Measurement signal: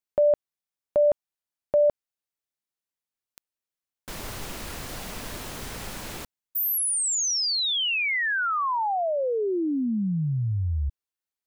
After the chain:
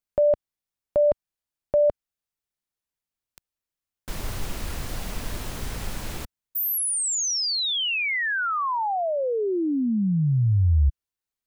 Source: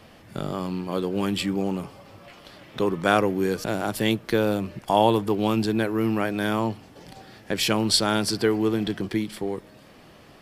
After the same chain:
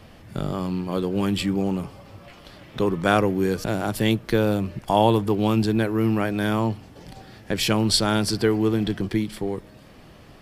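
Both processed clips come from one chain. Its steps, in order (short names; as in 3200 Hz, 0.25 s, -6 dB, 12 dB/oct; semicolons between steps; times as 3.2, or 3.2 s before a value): low shelf 120 Hz +11 dB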